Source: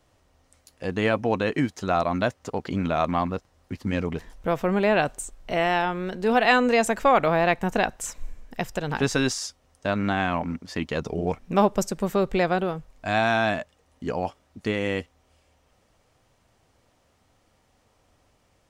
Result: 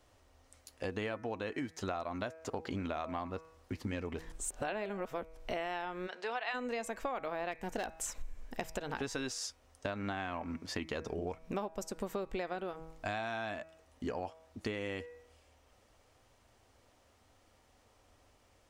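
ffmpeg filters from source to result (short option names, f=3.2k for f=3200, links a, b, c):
-filter_complex "[0:a]asplit=3[a][b][c];[a]afade=t=out:st=6.06:d=0.02[d];[b]highpass=790,lowpass=5.1k,afade=t=in:st=6.06:d=0.02,afade=t=out:st=6.53:d=0.02[e];[c]afade=t=in:st=6.53:d=0.02[f];[d][e][f]amix=inputs=3:normalize=0,asplit=3[g][h][i];[g]afade=t=out:st=7.51:d=0.02[j];[h]asoftclip=type=hard:threshold=-17.5dB,afade=t=in:st=7.51:d=0.02,afade=t=out:st=8.7:d=0.02[k];[i]afade=t=in:st=8.7:d=0.02[l];[j][k][l]amix=inputs=3:normalize=0,asplit=3[m][n][o];[m]atrim=end=4.322[p];[n]atrim=start=4.318:end=5.372,asetpts=PTS-STARTPTS,areverse[q];[o]atrim=start=5.368[r];[p][q]acrossfade=d=0.004:c1=hsin:c2=hsin[s];[s][r]acrossfade=d=0.004:c1=hsin:c2=hsin,equalizer=f=160:t=o:w=0.58:g=-9.5,bandreject=f=161.3:t=h:w=4,bandreject=f=322.6:t=h:w=4,bandreject=f=483.9:t=h:w=4,bandreject=f=645.2:t=h:w=4,bandreject=f=806.5:t=h:w=4,bandreject=f=967.8:t=h:w=4,bandreject=f=1.1291k:t=h:w=4,bandreject=f=1.2904k:t=h:w=4,bandreject=f=1.4517k:t=h:w=4,bandreject=f=1.613k:t=h:w=4,bandreject=f=1.7743k:t=h:w=4,bandreject=f=1.9356k:t=h:w=4,bandreject=f=2.0969k:t=h:w=4,bandreject=f=2.2582k:t=h:w=4,bandreject=f=2.4195k:t=h:w=4,bandreject=f=2.5808k:t=h:w=4,acompressor=threshold=-33dB:ratio=10,volume=-1.5dB"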